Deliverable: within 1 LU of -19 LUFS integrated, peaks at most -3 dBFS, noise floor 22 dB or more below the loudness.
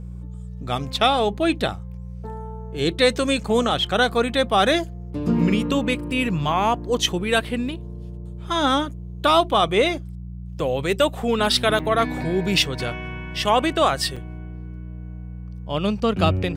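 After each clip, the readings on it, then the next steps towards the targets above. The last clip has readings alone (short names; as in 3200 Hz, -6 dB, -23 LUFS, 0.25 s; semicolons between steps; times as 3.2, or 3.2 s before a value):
dropouts 2; longest dropout 5.6 ms; hum 60 Hz; harmonics up to 180 Hz; hum level -31 dBFS; loudness -21.5 LUFS; peak -7.0 dBFS; loudness target -19.0 LUFS
-> interpolate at 11.79/14.16, 5.6 ms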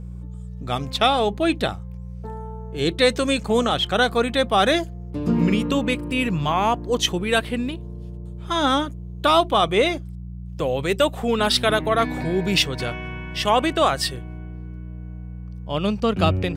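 dropouts 0; hum 60 Hz; harmonics up to 180 Hz; hum level -31 dBFS
-> de-hum 60 Hz, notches 3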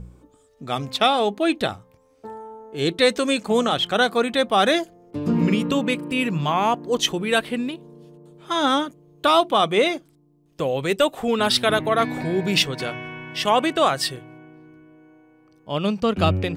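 hum none; loudness -21.5 LUFS; peak -7.0 dBFS; loudness target -19.0 LUFS
-> gain +2.5 dB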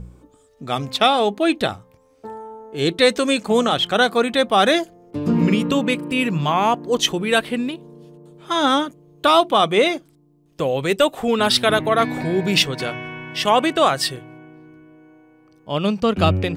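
loudness -19.0 LUFS; peak -4.5 dBFS; noise floor -56 dBFS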